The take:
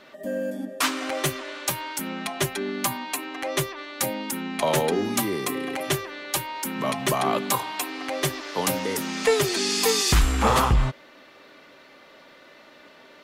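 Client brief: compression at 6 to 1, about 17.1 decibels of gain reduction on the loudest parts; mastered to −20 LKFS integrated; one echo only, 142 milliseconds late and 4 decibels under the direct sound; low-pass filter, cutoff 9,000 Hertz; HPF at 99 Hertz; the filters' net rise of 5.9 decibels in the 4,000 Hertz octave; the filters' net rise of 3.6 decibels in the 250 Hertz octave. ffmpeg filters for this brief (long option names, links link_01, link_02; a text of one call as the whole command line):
ffmpeg -i in.wav -af "highpass=99,lowpass=9000,equalizer=frequency=250:width_type=o:gain=4.5,equalizer=frequency=4000:width_type=o:gain=7.5,acompressor=threshold=-34dB:ratio=6,aecho=1:1:142:0.631,volume=15dB" out.wav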